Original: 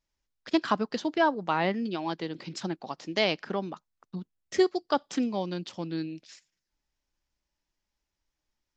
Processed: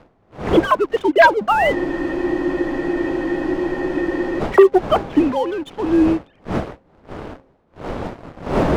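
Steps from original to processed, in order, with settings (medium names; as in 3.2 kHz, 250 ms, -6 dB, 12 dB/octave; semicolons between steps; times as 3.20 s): formants replaced by sine waves; wind noise 570 Hz -41 dBFS; waveshaping leveller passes 2; de-hum 267.4 Hz, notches 3; spectral freeze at 1.76 s, 2.63 s; trim +6.5 dB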